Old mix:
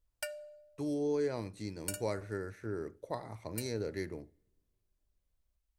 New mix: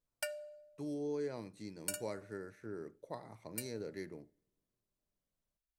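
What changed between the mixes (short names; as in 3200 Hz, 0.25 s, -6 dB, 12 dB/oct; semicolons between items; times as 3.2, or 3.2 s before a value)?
speech -6.5 dB; master: add resonant low shelf 110 Hz -8.5 dB, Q 1.5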